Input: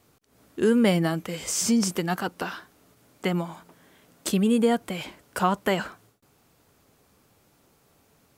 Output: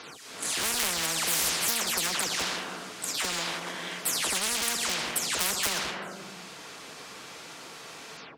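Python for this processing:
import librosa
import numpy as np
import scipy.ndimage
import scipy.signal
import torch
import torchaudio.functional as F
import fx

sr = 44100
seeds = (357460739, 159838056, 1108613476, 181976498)

p1 = fx.spec_delay(x, sr, highs='early', ms=204)
p2 = fx.leveller(p1, sr, passes=1)
p3 = fx.air_absorb(p2, sr, metres=88.0)
p4 = fx.room_shoebox(p3, sr, seeds[0], volume_m3=3400.0, walls='furnished', distance_m=0.54)
p5 = 10.0 ** (-20.5 / 20.0) * (np.abs((p4 / 10.0 ** (-20.5 / 20.0) + 3.0) % 4.0 - 2.0) - 1.0)
p6 = p4 + (p5 * librosa.db_to_amplitude(-8.0))
p7 = fx.highpass(p6, sr, hz=450.0, slope=6)
p8 = fx.tilt_shelf(p7, sr, db=-5.5, hz=1300.0)
p9 = fx.spectral_comp(p8, sr, ratio=10.0)
y = p9 * librosa.db_to_amplitude(3.0)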